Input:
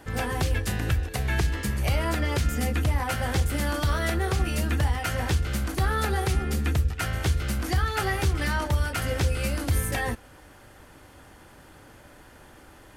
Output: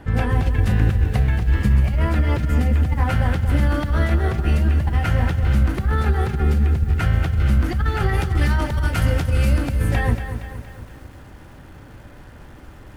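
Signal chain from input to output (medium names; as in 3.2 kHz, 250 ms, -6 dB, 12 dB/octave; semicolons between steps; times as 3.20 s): compressor with a negative ratio -26 dBFS, ratio -0.5; tone controls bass +9 dB, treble -12 dB, from 8.13 s treble -4 dB, from 9.57 s treble -11 dB; bit-crushed delay 233 ms, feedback 55%, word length 8-bit, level -9.5 dB; trim +1.5 dB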